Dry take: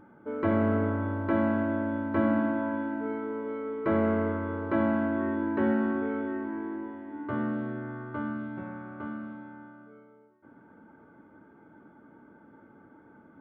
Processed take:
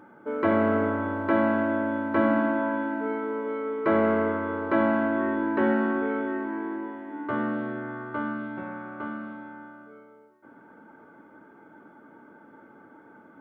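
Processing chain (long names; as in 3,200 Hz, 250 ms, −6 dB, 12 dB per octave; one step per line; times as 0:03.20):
high-pass filter 370 Hz 6 dB per octave
level +6.5 dB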